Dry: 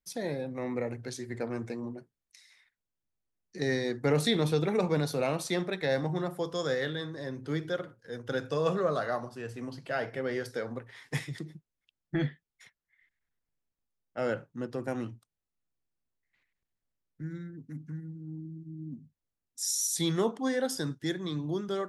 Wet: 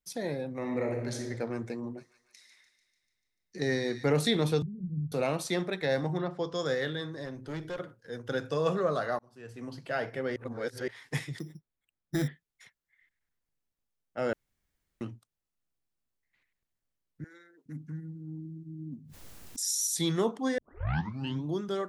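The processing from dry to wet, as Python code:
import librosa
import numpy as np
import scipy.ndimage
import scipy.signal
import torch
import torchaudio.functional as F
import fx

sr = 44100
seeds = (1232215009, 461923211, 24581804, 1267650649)

y = fx.reverb_throw(x, sr, start_s=0.58, length_s=0.65, rt60_s=1.3, drr_db=1.5)
y = fx.echo_wet_highpass(y, sr, ms=147, feedback_pct=61, hz=1800.0, wet_db=-10.5, at=(1.97, 4.03), fade=0.02)
y = fx.cheby2_lowpass(y, sr, hz=800.0, order=4, stop_db=70, at=(4.62, 5.12))
y = fx.lowpass(y, sr, hz=fx.line((6.17, 4200.0), (6.64, 7900.0)), slope=24, at=(6.17, 6.64), fade=0.02)
y = fx.tube_stage(y, sr, drive_db=32.0, bias=0.45, at=(7.25, 7.78))
y = fx.resample_bad(y, sr, factor=8, down='filtered', up='hold', at=(11.39, 12.28))
y = fx.highpass(y, sr, hz=480.0, slope=24, at=(17.24, 17.66))
y = fx.pre_swell(y, sr, db_per_s=32.0, at=(18.92, 19.64))
y = fx.edit(y, sr, fx.fade_in_span(start_s=9.19, length_s=0.58),
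    fx.reverse_span(start_s=10.36, length_s=0.52),
    fx.room_tone_fill(start_s=14.33, length_s=0.68),
    fx.tape_start(start_s=20.58, length_s=0.86), tone=tone)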